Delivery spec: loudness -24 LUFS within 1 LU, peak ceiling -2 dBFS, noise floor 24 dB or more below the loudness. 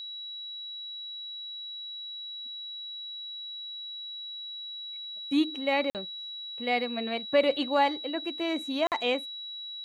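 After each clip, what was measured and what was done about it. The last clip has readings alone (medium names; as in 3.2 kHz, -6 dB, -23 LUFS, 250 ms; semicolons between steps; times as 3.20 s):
dropouts 2; longest dropout 48 ms; steady tone 3.9 kHz; tone level -37 dBFS; loudness -31.5 LUFS; peak level -12.0 dBFS; loudness target -24.0 LUFS
-> interpolate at 5.90/8.87 s, 48 ms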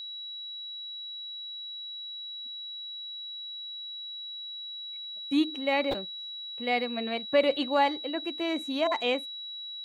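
dropouts 0; steady tone 3.9 kHz; tone level -37 dBFS
-> band-stop 3.9 kHz, Q 30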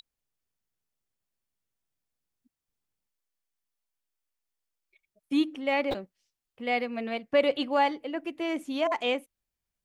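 steady tone not found; loudness -29.0 LUFS; peak level -12.0 dBFS; loudness target -24.0 LUFS
-> trim +5 dB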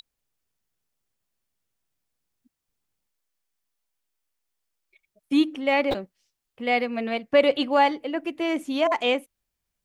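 loudness -24.0 LUFS; peak level -7.0 dBFS; noise floor -83 dBFS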